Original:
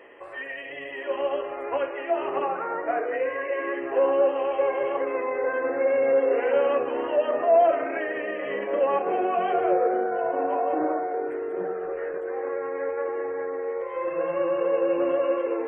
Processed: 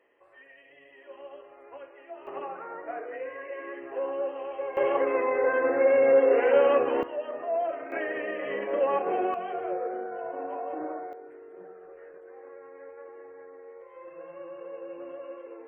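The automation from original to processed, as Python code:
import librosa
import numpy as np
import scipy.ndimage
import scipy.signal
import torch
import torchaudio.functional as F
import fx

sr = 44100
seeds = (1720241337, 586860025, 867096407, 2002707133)

y = fx.gain(x, sr, db=fx.steps((0.0, -18.0), (2.27, -10.0), (4.77, 1.5), (7.03, -10.5), (7.92, -2.5), (9.34, -9.5), (11.13, -17.0)))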